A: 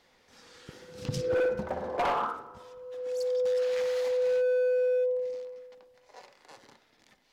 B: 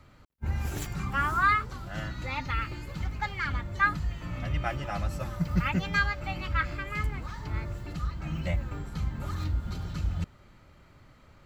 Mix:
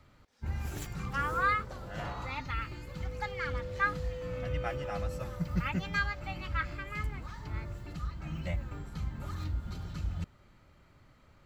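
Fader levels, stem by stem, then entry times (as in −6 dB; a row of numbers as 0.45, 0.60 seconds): −14.5, −5.0 decibels; 0.00, 0.00 seconds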